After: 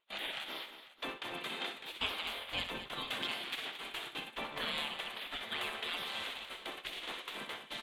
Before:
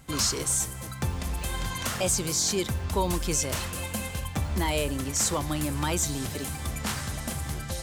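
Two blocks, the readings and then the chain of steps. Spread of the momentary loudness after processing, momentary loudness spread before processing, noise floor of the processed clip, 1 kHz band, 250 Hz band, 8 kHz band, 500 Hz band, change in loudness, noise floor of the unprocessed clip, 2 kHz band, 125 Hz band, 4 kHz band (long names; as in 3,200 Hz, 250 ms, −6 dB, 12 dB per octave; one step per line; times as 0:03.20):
6 LU, 8 LU, −56 dBFS, −9.0 dB, −18.5 dB, −28.5 dB, −14.5 dB, −11.0 dB, −37 dBFS, −3.0 dB, −28.5 dB, −3.5 dB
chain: gate on every frequency bin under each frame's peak −20 dB weak
noise gate −41 dBFS, range −21 dB
drawn EQ curve 1,600 Hz 0 dB, 3,500 Hz +5 dB, 5,300 Hz −20 dB
on a send: multi-tap delay 63/223/499 ms −9.5/−11.5/−18 dB
on the sum: level +1 dB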